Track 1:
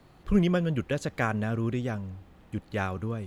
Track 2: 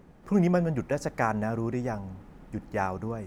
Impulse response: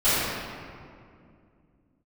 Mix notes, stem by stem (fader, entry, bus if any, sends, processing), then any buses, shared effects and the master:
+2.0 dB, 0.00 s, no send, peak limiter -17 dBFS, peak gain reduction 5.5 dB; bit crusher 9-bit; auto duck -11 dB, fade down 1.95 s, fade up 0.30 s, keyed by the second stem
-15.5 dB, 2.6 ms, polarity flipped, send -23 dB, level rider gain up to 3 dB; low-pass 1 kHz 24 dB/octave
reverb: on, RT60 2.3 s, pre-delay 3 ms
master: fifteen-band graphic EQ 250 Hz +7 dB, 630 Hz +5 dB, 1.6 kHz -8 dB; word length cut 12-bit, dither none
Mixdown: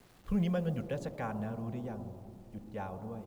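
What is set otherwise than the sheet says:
stem 1 +2.0 dB -> -6.5 dB; master: missing fifteen-band graphic EQ 250 Hz +7 dB, 630 Hz +5 dB, 1.6 kHz -8 dB

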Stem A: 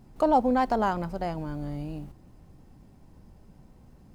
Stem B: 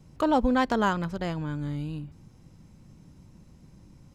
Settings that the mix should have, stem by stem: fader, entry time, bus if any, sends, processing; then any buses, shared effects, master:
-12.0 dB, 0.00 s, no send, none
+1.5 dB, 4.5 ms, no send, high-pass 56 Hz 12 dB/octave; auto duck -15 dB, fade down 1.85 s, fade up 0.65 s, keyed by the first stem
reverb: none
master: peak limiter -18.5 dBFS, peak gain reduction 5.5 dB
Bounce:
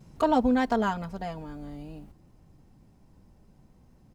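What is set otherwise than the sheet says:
stem A -12.0 dB -> -5.0 dB; master: missing peak limiter -18.5 dBFS, peak gain reduction 5.5 dB

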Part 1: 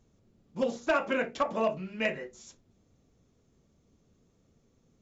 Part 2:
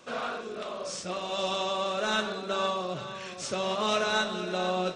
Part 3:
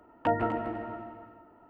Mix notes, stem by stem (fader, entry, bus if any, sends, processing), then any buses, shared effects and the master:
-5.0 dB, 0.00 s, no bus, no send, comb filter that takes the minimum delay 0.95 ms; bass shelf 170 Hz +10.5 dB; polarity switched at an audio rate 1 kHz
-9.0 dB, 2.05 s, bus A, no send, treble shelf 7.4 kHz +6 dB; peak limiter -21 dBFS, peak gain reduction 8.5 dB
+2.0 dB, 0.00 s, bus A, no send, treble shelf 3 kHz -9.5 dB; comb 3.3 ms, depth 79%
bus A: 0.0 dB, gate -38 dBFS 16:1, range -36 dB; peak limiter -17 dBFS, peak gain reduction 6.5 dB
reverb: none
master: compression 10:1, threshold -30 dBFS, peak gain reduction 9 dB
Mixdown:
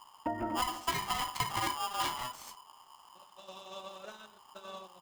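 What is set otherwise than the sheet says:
stem 1 -5.0 dB -> +3.5 dB; stem 3 +2.0 dB -> -6.0 dB

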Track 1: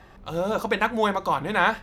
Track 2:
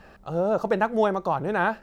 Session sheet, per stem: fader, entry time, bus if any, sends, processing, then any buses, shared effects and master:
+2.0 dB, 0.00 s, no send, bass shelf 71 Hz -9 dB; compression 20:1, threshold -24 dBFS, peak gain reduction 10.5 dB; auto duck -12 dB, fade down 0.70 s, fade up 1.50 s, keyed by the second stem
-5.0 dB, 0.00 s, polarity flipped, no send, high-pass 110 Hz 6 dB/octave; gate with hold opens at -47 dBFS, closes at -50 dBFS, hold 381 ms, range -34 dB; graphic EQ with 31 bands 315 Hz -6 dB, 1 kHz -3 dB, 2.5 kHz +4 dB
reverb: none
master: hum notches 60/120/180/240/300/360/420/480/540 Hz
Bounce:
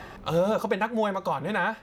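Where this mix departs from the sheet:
stem 1 +2.0 dB -> +10.0 dB; master: missing hum notches 60/120/180/240/300/360/420/480/540 Hz

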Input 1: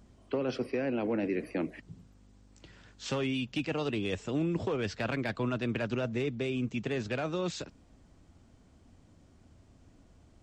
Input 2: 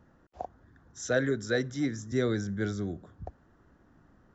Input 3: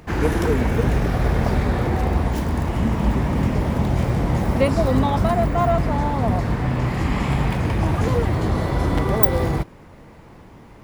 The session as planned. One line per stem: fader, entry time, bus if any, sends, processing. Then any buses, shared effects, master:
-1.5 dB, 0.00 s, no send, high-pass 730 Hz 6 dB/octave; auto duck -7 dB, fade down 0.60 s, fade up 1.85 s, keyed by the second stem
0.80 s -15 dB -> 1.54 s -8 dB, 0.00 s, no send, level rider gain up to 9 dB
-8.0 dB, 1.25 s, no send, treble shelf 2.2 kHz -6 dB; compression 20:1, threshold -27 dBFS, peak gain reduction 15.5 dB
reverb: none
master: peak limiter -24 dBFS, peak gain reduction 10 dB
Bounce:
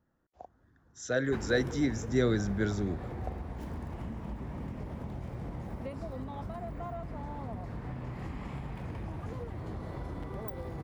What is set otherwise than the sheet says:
stem 1: muted; master: missing peak limiter -24 dBFS, peak gain reduction 10 dB

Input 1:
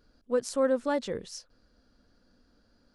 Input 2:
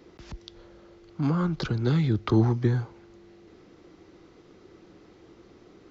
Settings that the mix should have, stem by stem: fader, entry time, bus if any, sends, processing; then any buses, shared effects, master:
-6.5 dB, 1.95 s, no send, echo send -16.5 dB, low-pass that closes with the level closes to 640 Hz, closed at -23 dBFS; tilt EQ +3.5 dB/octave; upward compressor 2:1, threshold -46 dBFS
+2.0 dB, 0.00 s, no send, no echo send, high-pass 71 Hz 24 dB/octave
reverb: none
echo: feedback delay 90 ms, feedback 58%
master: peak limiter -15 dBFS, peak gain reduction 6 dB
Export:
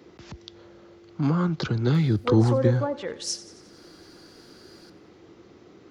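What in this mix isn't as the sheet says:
stem 1 -6.5 dB -> +5.0 dB; master: missing peak limiter -15 dBFS, peak gain reduction 6 dB

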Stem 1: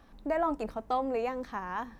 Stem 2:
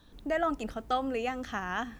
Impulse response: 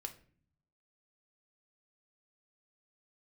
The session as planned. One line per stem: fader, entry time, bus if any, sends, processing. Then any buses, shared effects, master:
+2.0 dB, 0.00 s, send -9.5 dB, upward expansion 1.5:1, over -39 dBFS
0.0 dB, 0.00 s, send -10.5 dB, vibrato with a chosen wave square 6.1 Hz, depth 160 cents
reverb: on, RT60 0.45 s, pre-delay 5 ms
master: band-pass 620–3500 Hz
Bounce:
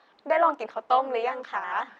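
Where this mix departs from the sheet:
stem 1 +2.0 dB -> +9.5 dB; reverb return -8.5 dB

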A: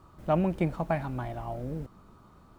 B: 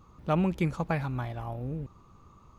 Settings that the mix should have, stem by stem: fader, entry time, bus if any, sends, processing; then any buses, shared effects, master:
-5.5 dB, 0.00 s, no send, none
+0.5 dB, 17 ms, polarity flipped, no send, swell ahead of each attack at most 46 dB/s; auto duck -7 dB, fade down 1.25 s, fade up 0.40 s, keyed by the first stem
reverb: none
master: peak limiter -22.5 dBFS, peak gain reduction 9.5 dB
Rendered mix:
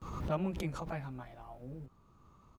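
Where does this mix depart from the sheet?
stem A -5.5 dB -> -14.5 dB; stem B +0.5 dB -> -7.5 dB

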